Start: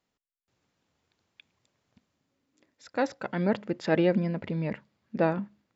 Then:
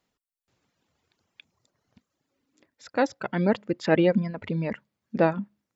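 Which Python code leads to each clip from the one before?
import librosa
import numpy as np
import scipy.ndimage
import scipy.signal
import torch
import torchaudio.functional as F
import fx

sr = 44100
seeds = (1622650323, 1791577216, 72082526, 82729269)

y = fx.dereverb_blind(x, sr, rt60_s=0.94)
y = y * librosa.db_to_amplitude(4.0)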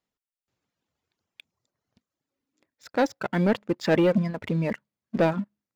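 y = fx.leveller(x, sr, passes=2)
y = y * librosa.db_to_amplitude(-5.0)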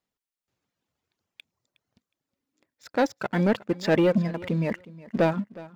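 y = fx.echo_feedback(x, sr, ms=364, feedback_pct=19, wet_db=-19.5)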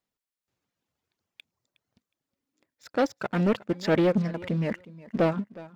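y = fx.doppler_dist(x, sr, depth_ms=0.37)
y = y * librosa.db_to_amplitude(-1.5)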